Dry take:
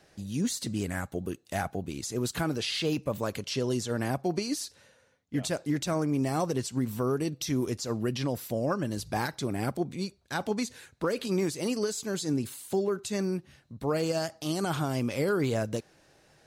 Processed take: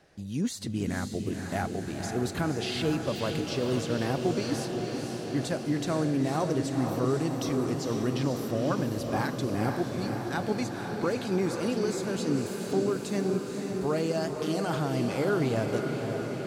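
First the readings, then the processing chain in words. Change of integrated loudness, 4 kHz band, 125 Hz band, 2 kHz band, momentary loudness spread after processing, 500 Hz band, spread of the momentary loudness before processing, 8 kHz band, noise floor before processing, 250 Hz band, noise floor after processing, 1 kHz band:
+1.5 dB, −1.5 dB, +2.0 dB, +1.0 dB, 5 LU, +2.0 dB, 6 LU, −3.0 dB, −63 dBFS, +2.0 dB, −37 dBFS, +2.0 dB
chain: high-shelf EQ 4,000 Hz −7 dB
on a send: feedback delay with all-pass diffusion 507 ms, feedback 72%, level −5 dB

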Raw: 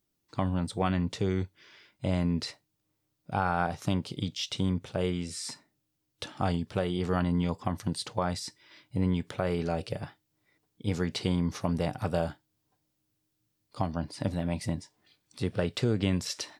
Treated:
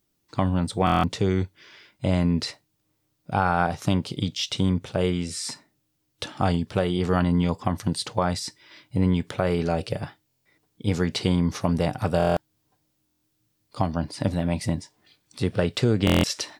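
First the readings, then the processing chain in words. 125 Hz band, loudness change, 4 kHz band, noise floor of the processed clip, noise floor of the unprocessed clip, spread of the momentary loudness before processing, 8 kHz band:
+6.0 dB, +6.0 dB, +6.5 dB, −73 dBFS, −79 dBFS, 9 LU, +6.0 dB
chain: buffer that repeats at 0:00.85/0:10.27/0:12.18/0:13.05/0:16.05, samples 1,024, times 7
level +6 dB

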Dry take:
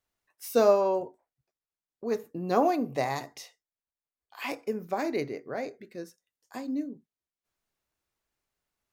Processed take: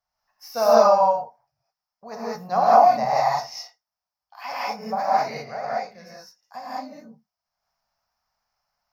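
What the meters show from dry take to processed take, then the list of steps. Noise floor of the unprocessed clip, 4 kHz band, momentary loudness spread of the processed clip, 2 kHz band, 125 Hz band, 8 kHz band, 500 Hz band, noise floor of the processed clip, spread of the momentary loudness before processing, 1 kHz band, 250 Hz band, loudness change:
below −85 dBFS, +8.5 dB, 20 LU, +5.5 dB, +0.5 dB, +5.0 dB, +6.0 dB, below −85 dBFS, 20 LU, +13.5 dB, −3.5 dB, +9.0 dB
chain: drawn EQ curve 200 Hz 0 dB, 330 Hz −22 dB, 720 Hz +12 dB, 3,600 Hz −5 dB, 5,300 Hz +12 dB, 8,300 Hz −16 dB, 13,000 Hz −2 dB
reverb whose tail is shaped and stops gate 230 ms rising, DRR −8 dB
level −5 dB

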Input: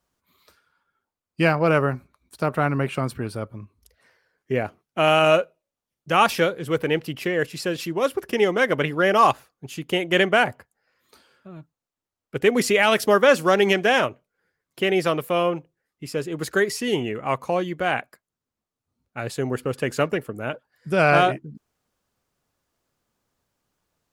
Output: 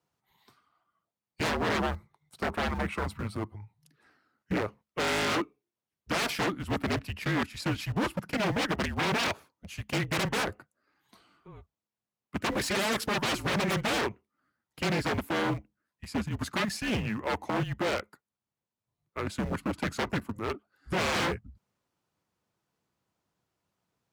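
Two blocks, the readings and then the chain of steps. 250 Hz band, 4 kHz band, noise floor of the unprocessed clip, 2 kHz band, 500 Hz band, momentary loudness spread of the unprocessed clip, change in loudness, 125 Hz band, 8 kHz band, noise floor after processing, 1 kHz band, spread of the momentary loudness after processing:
−5.5 dB, −5.0 dB, below −85 dBFS, −8.0 dB, −13.0 dB, 14 LU, −9.0 dB, −5.0 dB, −3.5 dB, below −85 dBFS, −10.0 dB, 8 LU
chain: in parallel at −11.5 dB: centre clipping without the shift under −25 dBFS
on the sum: frequency shifter −210 Hz
wave folding −19 dBFS
high-pass filter 92 Hz 12 dB per octave
high-shelf EQ 4,900 Hz −7 dB
level −3 dB

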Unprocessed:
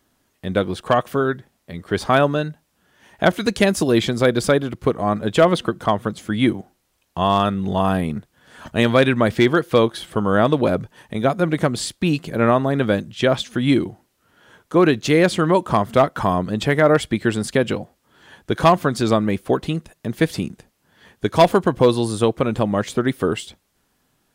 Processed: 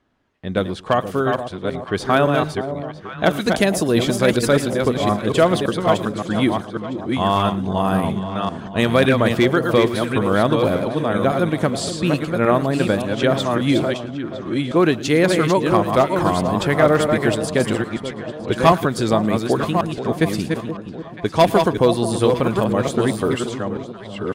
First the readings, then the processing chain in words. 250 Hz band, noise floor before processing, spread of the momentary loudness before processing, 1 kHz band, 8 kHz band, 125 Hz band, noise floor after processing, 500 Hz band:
+1.0 dB, −68 dBFS, 11 LU, +0.5 dB, +2.0 dB, +1.0 dB, −35 dBFS, +1.0 dB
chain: delay that plays each chunk backwards 566 ms, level −4.5 dB
high-shelf EQ 12,000 Hz +8.5 dB
delay that swaps between a low-pass and a high-pass 479 ms, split 940 Hz, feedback 62%, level −10 dB
low-pass that shuts in the quiet parts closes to 2,700 Hz, open at −14 dBFS
single-tap delay 111 ms −20.5 dB
level −1 dB

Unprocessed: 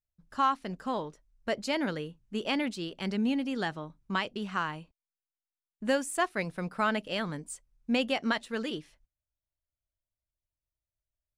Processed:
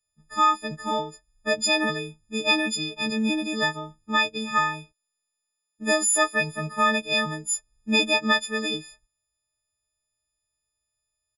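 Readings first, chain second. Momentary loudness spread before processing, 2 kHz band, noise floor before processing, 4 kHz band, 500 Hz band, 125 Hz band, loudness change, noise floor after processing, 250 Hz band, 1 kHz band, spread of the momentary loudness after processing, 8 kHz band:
12 LU, +10.0 dB, below −85 dBFS, +11.0 dB, +5.0 dB, +3.5 dB, +8.0 dB, −82 dBFS, +3.0 dB, +7.0 dB, 12 LU, +17.0 dB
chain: every partial snapped to a pitch grid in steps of 6 semitones
downsampling to 22,050 Hz
level +3.5 dB

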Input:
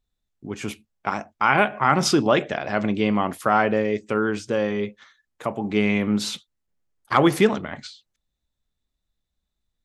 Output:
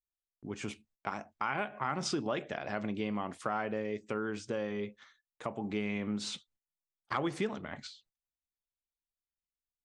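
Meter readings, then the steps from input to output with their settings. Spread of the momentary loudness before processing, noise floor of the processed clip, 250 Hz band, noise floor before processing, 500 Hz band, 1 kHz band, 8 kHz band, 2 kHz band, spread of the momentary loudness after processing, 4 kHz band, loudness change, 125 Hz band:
14 LU, below −85 dBFS, −14.0 dB, −81 dBFS, −14.0 dB, −14.5 dB, −12.5 dB, −14.5 dB, 9 LU, −12.5 dB, −14.5 dB, −14.0 dB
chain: downward compressor 2.5 to 1, threshold −26 dBFS, peak gain reduction 10 dB
noise gate −59 dBFS, range −18 dB
Butterworth low-pass 9,300 Hz 48 dB per octave
level −7.5 dB

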